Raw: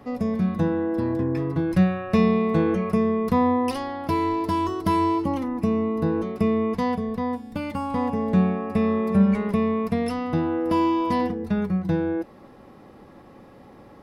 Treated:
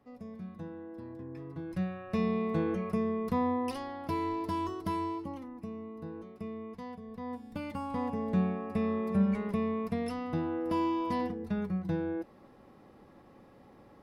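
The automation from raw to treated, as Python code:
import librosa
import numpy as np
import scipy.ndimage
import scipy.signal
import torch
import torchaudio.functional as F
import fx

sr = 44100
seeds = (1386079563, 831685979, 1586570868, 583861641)

y = fx.gain(x, sr, db=fx.line((1.16, -20.0), (2.43, -9.5), (4.66, -9.5), (5.72, -19.0), (7.01, -19.0), (7.44, -9.0)))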